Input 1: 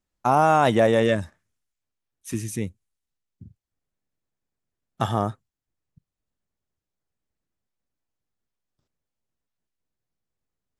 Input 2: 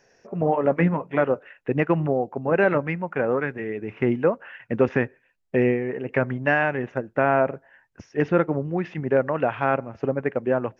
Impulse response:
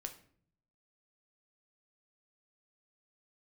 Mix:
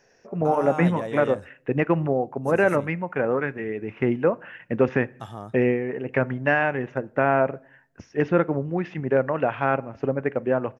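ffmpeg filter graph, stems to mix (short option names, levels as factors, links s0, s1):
-filter_complex "[0:a]adelay=200,volume=0.211[s0];[1:a]volume=0.794,asplit=2[s1][s2];[s2]volume=0.335[s3];[2:a]atrim=start_sample=2205[s4];[s3][s4]afir=irnorm=-1:irlink=0[s5];[s0][s1][s5]amix=inputs=3:normalize=0"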